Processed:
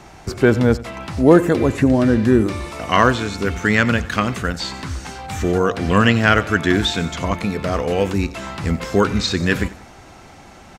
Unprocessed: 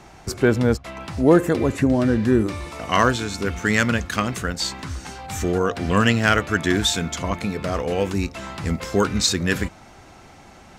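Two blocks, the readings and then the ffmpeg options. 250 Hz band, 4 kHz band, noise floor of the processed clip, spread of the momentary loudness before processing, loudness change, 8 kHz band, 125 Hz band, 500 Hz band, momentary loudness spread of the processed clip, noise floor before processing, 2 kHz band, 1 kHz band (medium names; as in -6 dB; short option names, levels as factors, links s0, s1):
+3.5 dB, +1.0 dB, -43 dBFS, 11 LU, +3.0 dB, -4.5 dB, +3.5 dB, +3.5 dB, 12 LU, -46 dBFS, +3.5 dB, +3.5 dB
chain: -filter_complex "[0:a]asplit=2[s0][s1];[s1]aecho=0:1:92|184|276:0.112|0.0471|0.0198[s2];[s0][s2]amix=inputs=2:normalize=0,acrossover=split=4300[s3][s4];[s4]acompressor=threshold=0.01:ratio=4:attack=1:release=60[s5];[s3][s5]amix=inputs=2:normalize=0,volume=1.5"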